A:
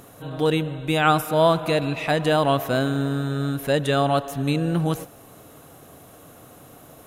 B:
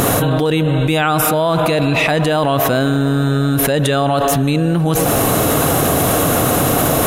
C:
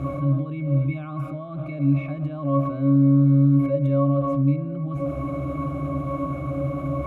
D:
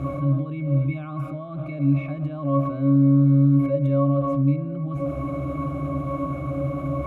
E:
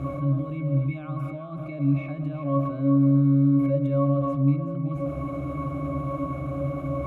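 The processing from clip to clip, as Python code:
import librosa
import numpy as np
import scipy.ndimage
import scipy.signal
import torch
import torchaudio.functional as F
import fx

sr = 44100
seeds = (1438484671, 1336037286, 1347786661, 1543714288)

y1 = fx.env_flatten(x, sr, amount_pct=100)
y2 = fx.octave_resonator(y1, sr, note='C#', decay_s=0.27)
y3 = y2
y4 = y3 + 10.0 ** (-10.5 / 20.0) * np.pad(y3, (int(377 * sr / 1000.0), 0))[:len(y3)]
y4 = y4 * librosa.db_to_amplitude(-2.5)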